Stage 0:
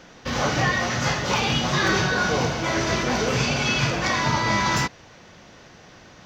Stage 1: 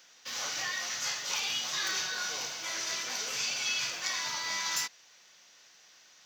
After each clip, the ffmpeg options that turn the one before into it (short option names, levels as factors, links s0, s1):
-af "aderivative"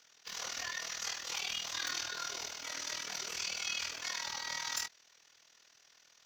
-af "tremolo=f=40:d=0.788,afreqshift=-52,volume=0.794"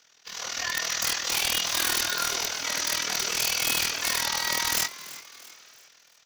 -filter_complex "[0:a]dynaudnorm=f=110:g=11:m=2.82,aeval=exprs='(mod(10.6*val(0)+1,2)-1)/10.6':c=same,asplit=5[s0][s1][s2][s3][s4];[s1]adelay=337,afreqshift=110,volume=0.158[s5];[s2]adelay=674,afreqshift=220,volume=0.0668[s6];[s3]adelay=1011,afreqshift=330,volume=0.0279[s7];[s4]adelay=1348,afreqshift=440,volume=0.0117[s8];[s0][s5][s6][s7][s8]amix=inputs=5:normalize=0,volume=1.5"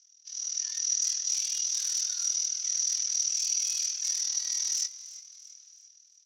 -af "bandpass=f=5800:t=q:w=12:csg=0,volume=2.24"